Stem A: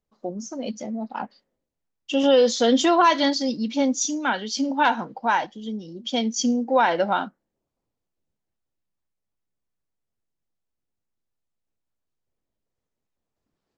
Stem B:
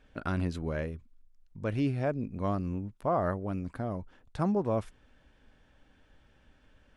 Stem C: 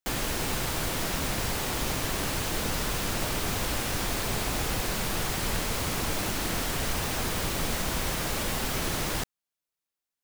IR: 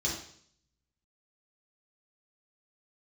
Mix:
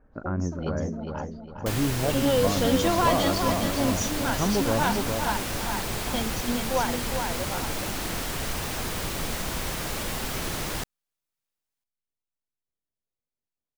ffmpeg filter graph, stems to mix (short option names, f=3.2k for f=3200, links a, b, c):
-filter_complex "[0:a]volume=-7dB,asplit=2[a][b];[b]volume=-6.5dB[c];[1:a]lowpass=f=1.4k:w=0.5412,lowpass=f=1.4k:w=1.3066,acontrast=71,volume=-4dB,asplit=3[d][e][f];[e]volume=-5dB[g];[2:a]adelay=1600,volume=-1dB[h];[f]apad=whole_len=607487[i];[a][i]sidechaingate=range=-33dB:threshold=-58dB:ratio=16:detection=peak[j];[c][g]amix=inputs=2:normalize=0,aecho=0:1:407|814|1221|1628|2035:1|0.34|0.116|0.0393|0.0134[k];[j][d][h][k]amix=inputs=4:normalize=0"